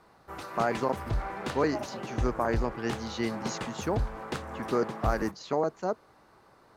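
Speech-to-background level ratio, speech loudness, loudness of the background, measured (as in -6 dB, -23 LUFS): 4.5 dB, -32.0 LUFS, -36.5 LUFS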